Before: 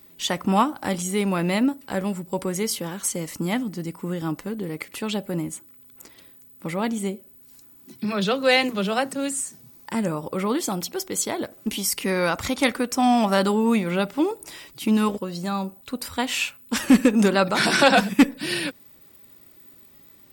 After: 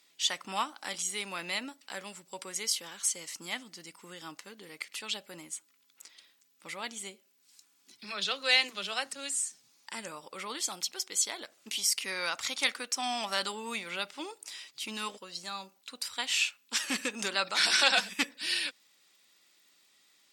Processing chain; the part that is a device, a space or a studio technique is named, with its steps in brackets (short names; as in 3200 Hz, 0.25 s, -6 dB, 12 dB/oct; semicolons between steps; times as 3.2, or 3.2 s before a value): piezo pickup straight into a mixer (LPF 5200 Hz 12 dB/oct; differentiator); gain +5.5 dB